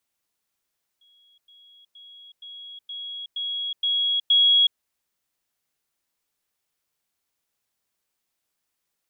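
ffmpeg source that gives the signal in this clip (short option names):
-f lavfi -i "aevalsrc='pow(10,(-56+6*floor(t/0.47))/20)*sin(2*PI*3320*t)*clip(min(mod(t,0.47),0.37-mod(t,0.47))/0.005,0,1)':d=3.76:s=44100"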